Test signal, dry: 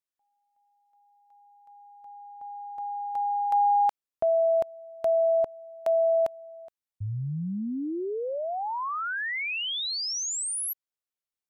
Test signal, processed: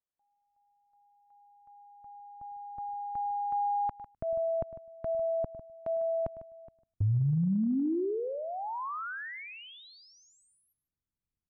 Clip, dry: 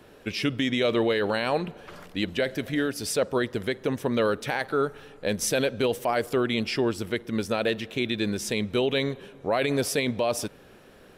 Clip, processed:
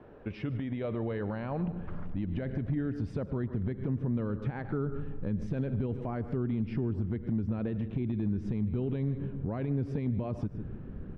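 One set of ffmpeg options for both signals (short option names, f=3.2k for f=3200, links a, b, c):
-filter_complex "[0:a]asplit=2[a][b];[b]aecho=0:1:104:0.1[c];[a][c]amix=inputs=2:normalize=0,asubboost=boost=11.5:cutoff=180,asplit=2[d][e];[e]aecho=0:1:150:0.133[f];[d][f]amix=inputs=2:normalize=0,acompressor=threshold=-26dB:ratio=5:attack=0.32:release=135:knee=6:detection=rms,lowpass=1.2k"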